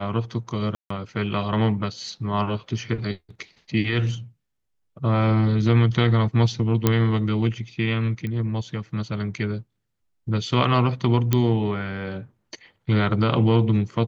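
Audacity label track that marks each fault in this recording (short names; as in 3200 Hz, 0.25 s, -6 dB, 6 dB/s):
0.750000	0.900000	gap 0.154 s
6.870000	6.870000	pop -4 dBFS
8.270000	8.270000	pop -19 dBFS
11.330000	11.330000	pop -6 dBFS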